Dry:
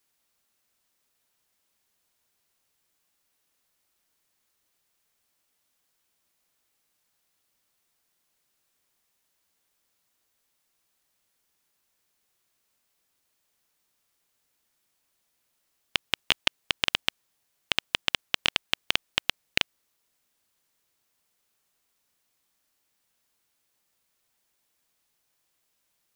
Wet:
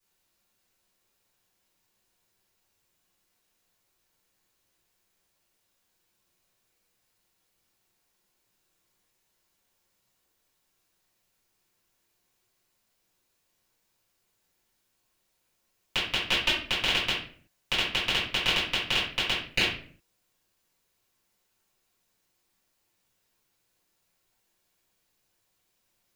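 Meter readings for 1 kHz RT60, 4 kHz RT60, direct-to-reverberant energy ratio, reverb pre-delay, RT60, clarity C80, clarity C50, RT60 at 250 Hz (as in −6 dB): 0.40 s, 0.35 s, −10.5 dB, 3 ms, 0.50 s, 8.0 dB, 3.0 dB, 0.65 s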